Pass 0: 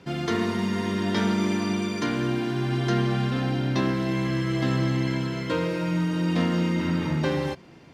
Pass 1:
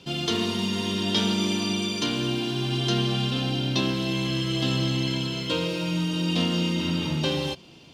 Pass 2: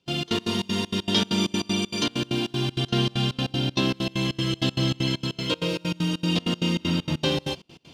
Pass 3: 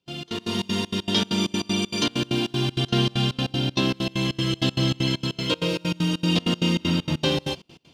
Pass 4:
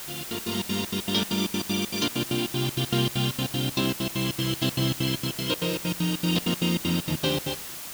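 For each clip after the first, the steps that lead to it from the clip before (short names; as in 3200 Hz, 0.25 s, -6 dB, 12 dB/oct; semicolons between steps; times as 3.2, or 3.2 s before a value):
resonant high shelf 2400 Hz +7 dB, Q 3; gain -1.5 dB
step gate ".xx.x.xx" 195 bpm -24 dB; gain +2 dB
AGC gain up to 11.5 dB; gain -7.5 dB
added noise white -35 dBFS; gain -3 dB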